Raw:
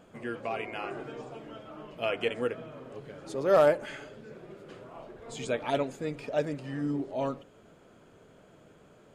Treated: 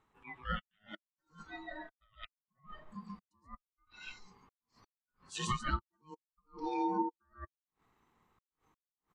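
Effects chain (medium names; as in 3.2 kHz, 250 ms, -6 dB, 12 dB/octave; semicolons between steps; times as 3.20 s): low-pass that closes with the level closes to 2 kHz, closed at -24 dBFS; high-pass 290 Hz 6 dB/octave; treble shelf 3.4 kHz -3 dB; multi-tap echo 129/142 ms -11.5/-3.5 dB; compression 6:1, threshold -35 dBFS, peak gain reduction 16 dB; trance gate "xxxxx.xx..x" 127 bpm -60 dB; ring modulator 620 Hz; spectral noise reduction 22 dB; attacks held to a fixed rise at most 240 dB/s; trim +9 dB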